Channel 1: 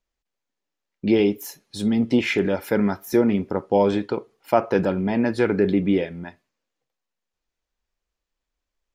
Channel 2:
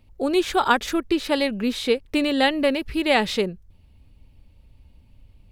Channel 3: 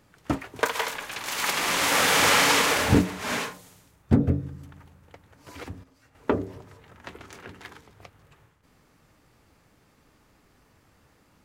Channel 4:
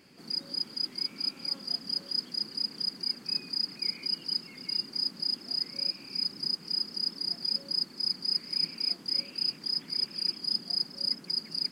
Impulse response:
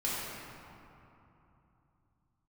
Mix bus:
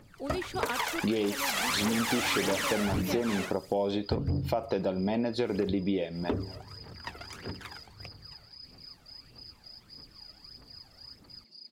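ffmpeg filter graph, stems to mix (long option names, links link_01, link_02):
-filter_complex "[0:a]volume=0dB[link_01];[1:a]volume=-14dB[link_02];[2:a]aphaser=in_gain=1:out_gain=1:delay=1.6:decay=0.66:speed=1.6:type=triangular,asoftclip=type=tanh:threshold=-15.5dB,volume=-2dB[link_03];[3:a]alimiter=level_in=3.5dB:limit=-24dB:level=0:latency=1:release=19,volume=-3.5dB,asplit=2[link_04][link_05];[link_05]adelay=6.6,afreqshift=-0.5[link_06];[link_04][link_06]amix=inputs=2:normalize=1,volume=-16dB[link_07];[link_01][link_07]amix=inputs=2:normalize=0,equalizer=frequency=630:width_type=o:width=0.67:gain=6,equalizer=frequency=1600:width_type=o:width=0.67:gain=-6,equalizer=frequency=4000:width_type=o:width=0.67:gain=11,equalizer=frequency=10000:width_type=o:width=0.67:gain=-4,alimiter=limit=-10dB:level=0:latency=1:release=244,volume=0dB[link_08];[link_02][link_03][link_08]amix=inputs=3:normalize=0,acompressor=threshold=-27dB:ratio=4"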